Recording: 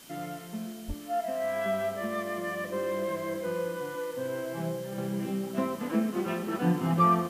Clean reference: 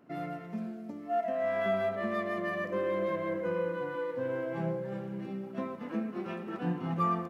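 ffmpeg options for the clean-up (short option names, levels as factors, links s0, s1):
-filter_complex "[0:a]bandreject=f=3100:w=30,asplit=3[s0][s1][s2];[s0]afade=t=out:st=0.87:d=0.02[s3];[s1]highpass=f=140:w=0.5412,highpass=f=140:w=1.3066,afade=t=in:st=0.87:d=0.02,afade=t=out:st=0.99:d=0.02[s4];[s2]afade=t=in:st=0.99:d=0.02[s5];[s3][s4][s5]amix=inputs=3:normalize=0,afwtdn=0.0028,asetnsamples=n=441:p=0,asendcmd='4.98 volume volume -6.5dB',volume=1"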